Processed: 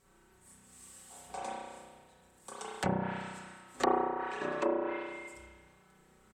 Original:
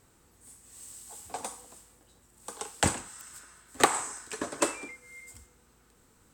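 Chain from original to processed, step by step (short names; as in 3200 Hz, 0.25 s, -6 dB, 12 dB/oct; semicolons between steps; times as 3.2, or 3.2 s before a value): self-modulated delay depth 0.068 ms; comb 5.3 ms, depth 67%; spring tank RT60 1.5 s, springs 32 ms, chirp 65 ms, DRR -7 dB; treble ducked by the level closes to 810 Hz, closed at -18 dBFS; gain -8 dB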